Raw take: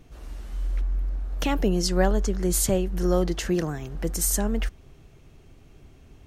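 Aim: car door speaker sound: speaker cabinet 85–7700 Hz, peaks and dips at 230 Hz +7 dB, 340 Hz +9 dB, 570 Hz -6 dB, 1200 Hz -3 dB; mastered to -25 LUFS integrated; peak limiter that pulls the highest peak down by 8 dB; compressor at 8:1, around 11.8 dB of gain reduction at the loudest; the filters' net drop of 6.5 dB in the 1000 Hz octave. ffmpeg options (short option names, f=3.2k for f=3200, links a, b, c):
-af "equalizer=f=1k:t=o:g=-8,acompressor=threshold=-30dB:ratio=8,alimiter=level_in=3dB:limit=-24dB:level=0:latency=1,volume=-3dB,highpass=85,equalizer=f=230:t=q:w=4:g=7,equalizer=f=340:t=q:w=4:g=9,equalizer=f=570:t=q:w=4:g=-6,equalizer=f=1.2k:t=q:w=4:g=-3,lowpass=f=7.7k:w=0.5412,lowpass=f=7.7k:w=1.3066,volume=10dB"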